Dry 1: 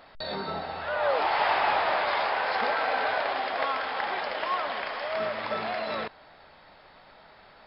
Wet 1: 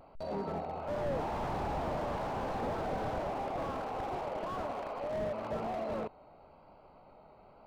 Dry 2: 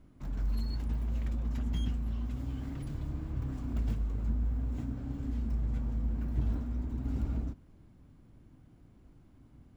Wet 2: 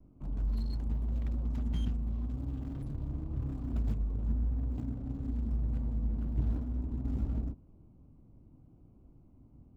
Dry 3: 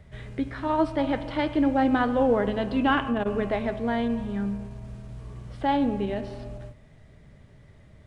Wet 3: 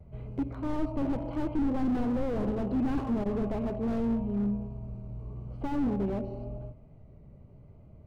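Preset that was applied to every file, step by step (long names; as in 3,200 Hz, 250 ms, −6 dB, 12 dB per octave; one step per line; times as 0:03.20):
adaptive Wiener filter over 25 samples
pitch vibrato 0.93 Hz 36 cents
slew-rate limiting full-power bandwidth 14 Hz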